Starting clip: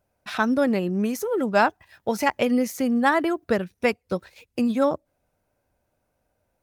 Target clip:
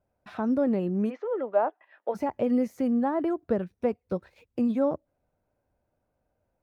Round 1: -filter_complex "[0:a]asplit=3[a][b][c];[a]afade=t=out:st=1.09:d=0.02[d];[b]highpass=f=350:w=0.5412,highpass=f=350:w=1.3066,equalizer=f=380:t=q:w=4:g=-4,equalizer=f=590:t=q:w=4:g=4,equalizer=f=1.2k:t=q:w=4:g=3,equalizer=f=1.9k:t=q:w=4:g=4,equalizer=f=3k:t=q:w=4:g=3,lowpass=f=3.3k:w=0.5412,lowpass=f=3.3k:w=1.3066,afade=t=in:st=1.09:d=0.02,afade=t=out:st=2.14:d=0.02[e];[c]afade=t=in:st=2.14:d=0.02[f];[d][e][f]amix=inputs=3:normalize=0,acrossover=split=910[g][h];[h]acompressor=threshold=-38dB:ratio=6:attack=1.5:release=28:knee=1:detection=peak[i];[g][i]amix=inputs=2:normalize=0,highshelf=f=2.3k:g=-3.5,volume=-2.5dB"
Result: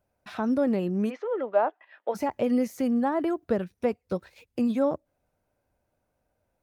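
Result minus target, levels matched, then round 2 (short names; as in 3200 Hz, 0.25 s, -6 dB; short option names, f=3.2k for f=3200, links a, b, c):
4000 Hz band +6.5 dB
-filter_complex "[0:a]asplit=3[a][b][c];[a]afade=t=out:st=1.09:d=0.02[d];[b]highpass=f=350:w=0.5412,highpass=f=350:w=1.3066,equalizer=f=380:t=q:w=4:g=-4,equalizer=f=590:t=q:w=4:g=4,equalizer=f=1.2k:t=q:w=4:g=3,equalizer=f=1.9k:t=q:w=4:g=4,equalizer=f=3k:t=q:w=4:g=3,lowpass=f=3.3k:w=0.5412,lowpass=f=3.3k:w=1.3066,afade=t=in:st=1.09:d=0.02,afade=t=out:st=2.14:d=0.02[e];[c]afade=t=in:st=2.14:d=0.02[f];[d][e][f]amix=inputs=3:normalize=0,acrossover=split=910[g][h];[h]acompressor=threshold=-38dB:ratio=6:attack=1.5:release=28:knee=1:detection=peak[i];[g][i]amix=inputs=2:normalize=0,highshelf=f=2.3k:g=-14,volume=-2.5dB"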